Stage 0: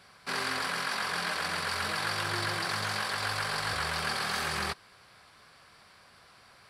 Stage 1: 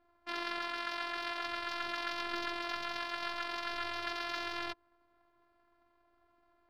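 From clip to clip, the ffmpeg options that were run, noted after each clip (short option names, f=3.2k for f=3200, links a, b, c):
-af "afftfilt=real='hypot(re,im)*cos(PI*b)':imag='0':win_size=512:overlap=0.75,adynamicsmooth=sensitivity=5:basefreq=730,highshelf=f=6.3k:t=q:w=1.5:g=-8,volume=-2.5dB"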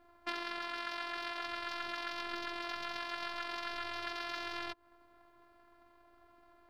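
-af "acompressor=threshold=-41dB:ratio=12,volume=7.5dB"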